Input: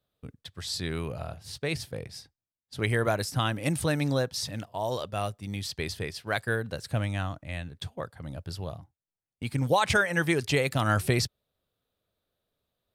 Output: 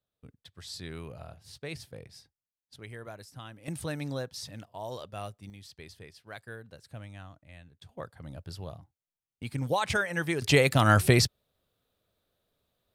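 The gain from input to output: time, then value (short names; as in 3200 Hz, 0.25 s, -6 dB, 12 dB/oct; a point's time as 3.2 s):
-8.5 dB
from 2.76 s -17.5 dB
from 3.68 s -8 dB
from 5.5 s -15 dB
from 7.89 s -4.5 dB
from 10.42 s +4 dB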